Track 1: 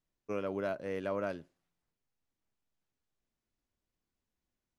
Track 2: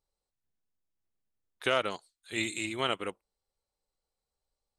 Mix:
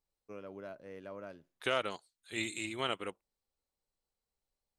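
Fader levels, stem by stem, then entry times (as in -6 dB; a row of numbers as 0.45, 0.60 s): -11.0, -4.5 dB; 0.00, 0.00 s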